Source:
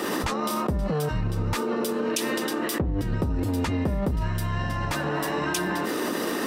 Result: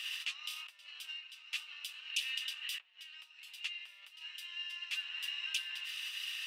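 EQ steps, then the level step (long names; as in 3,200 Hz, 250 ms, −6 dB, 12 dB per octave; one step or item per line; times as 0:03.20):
four-pole ladder high-pass 2,600 Hz, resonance 75%
high-shelf EQ 7,900 Hz −8.5 dB
+1.5 dB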